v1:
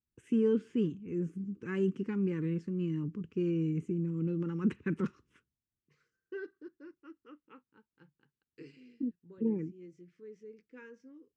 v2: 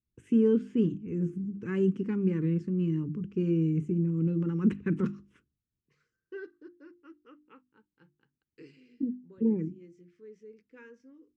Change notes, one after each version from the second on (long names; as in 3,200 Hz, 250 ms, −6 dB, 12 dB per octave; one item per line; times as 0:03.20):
first voice: add low-shelf EQ 380 Hz +7.5 dB
master: add mains-hum notches 50/100/150/200/250/300/350 Hz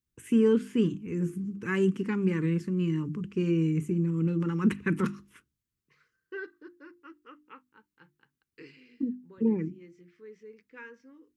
first voice: remove high-frequency loss of the air 140 metres
master: add graphic EQ with 10 bands 1,000 Hz +8 dB, 2,000 Hz +7 dB, 4,000 Hz +6 dB